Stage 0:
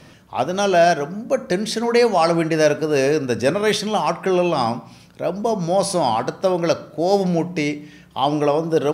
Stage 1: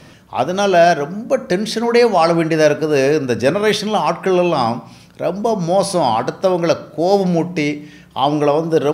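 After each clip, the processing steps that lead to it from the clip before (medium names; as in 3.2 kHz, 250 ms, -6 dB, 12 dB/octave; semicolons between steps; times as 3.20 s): dynamic bell 7.7 kHz, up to -5 dB, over -42 dBFS, Q 1.4; trim +3.5 dB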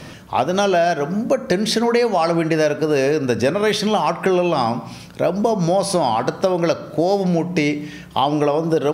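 compression, threshold -20 dBFS, peak gain reduction 12.5 dB; trim +5.5 dB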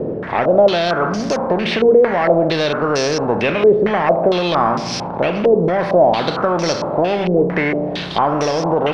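spectral levelling over time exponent 0.6; power-law waveshaper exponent 0.7; step-sequenced low-pass 4.4 Hz 440–5500 Hz; trim -8 dB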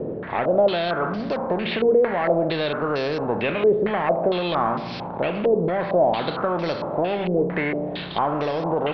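steep low-pass 4.3 kHz 48 dB/octave; trim -6.5 dB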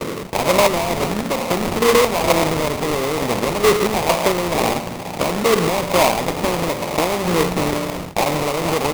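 rattle on loud lows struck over -29 dBFS, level -15 dBFS; gate with hold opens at -23 dBFS; sample-rate reducer 1.6 kHz, jitter 20%; trim +3.5 dB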